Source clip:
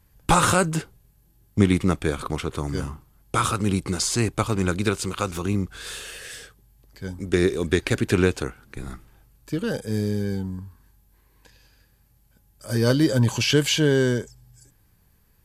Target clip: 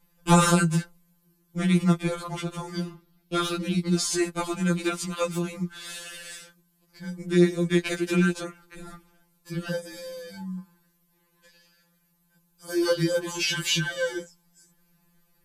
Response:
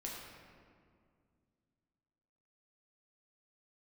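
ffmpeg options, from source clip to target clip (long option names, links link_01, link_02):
-filter_complex "[0:a]asettb=1/sr,asplit=3[link_01][link_02][link_03];[link_01]atrim=end=2.764[link_04];[link_02]atrim=start=2.76:end=3.98,asetpts=PTS-STARTPTS,afade=type=in:duration=0.004:curve=qsin,afade=type=out:start_time=1.216:duration=0.004:curve=qsin,equalizer=frequency=125:width_type=o:width=1:gain=-3,equalizer=frequency=250:width_type=o:width=1:gain=8,equalizer=frequency=1000:width_type=o:width=1:gain=-8,equalizer=frequency=4000:width_type=o:width=1:gain=7,equalizer=frequency=8000:width_type=o:width=1:gain=-10[link_05];[link_03]atrim=start=3.976[link_06];[link_04][link_05]acrossfade=duration=0.004:curve1=hsin:curve2=qsin[link_07];[link_07][link_06]acrossfade=duration=0.004:curve1=qsin:curve2=hsin,afftfilt=real='re*2.83*eq(mod(b,8),0)':imag='im*2.83*eq(mod(b,8),0)':win_size=2048:overlap=0.75"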